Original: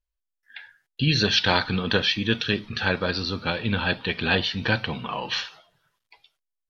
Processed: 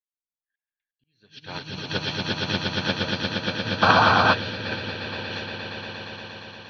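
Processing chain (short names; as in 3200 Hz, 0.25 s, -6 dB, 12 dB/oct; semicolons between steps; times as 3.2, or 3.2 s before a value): on a send: swelling echo 0.117 s, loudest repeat 8, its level -4 dB; on the sum: auto swell 0.544 s; painted sound noise, 3.82–4.34, 610–1600 Hz -14 dBFS; upward expander 2.5:1, over -33 dBFS; gain -2.5 dB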